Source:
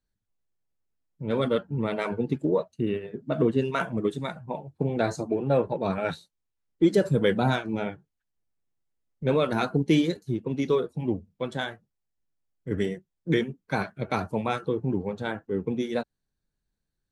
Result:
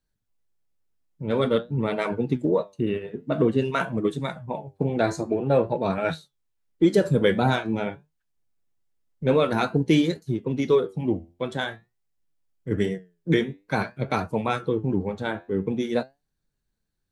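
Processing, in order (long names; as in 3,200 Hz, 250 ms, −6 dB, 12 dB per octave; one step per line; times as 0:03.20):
flanger 0.49 Hz, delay 6 ms, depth 6.3 ms, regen +79%
level +7 dB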